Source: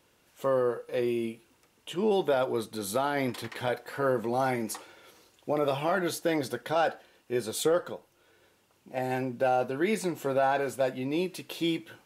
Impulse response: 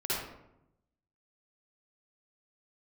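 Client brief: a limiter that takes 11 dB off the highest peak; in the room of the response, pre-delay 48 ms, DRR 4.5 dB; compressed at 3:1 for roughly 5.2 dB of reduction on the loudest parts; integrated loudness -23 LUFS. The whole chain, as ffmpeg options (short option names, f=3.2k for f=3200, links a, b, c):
-filter_complex "[0:a]acompressor=threshold=-28dB:ratio=3,alimiter=level_in=5dB:limit=-24dB:level=0:latency=1,volume=-5dB,asplit=2[a][b];[1:a]atrim=start_sample=2205,adelay=48[c];[b][c]afir=irnorm=-1:irlink=0,volume=-11.5dB[d];[a][d]amix=inputs=2:normalize=0,volume=14.5dB"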